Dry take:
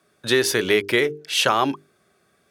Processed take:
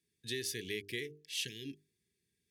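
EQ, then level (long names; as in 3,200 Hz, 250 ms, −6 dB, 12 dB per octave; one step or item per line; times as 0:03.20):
linear-phase brick-wall band-stop 500–1,600 Hz
guitar amp tone stack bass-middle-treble 10-0-1
low-shelf EQ 450 Hz −9.5 dB
+6.0 dB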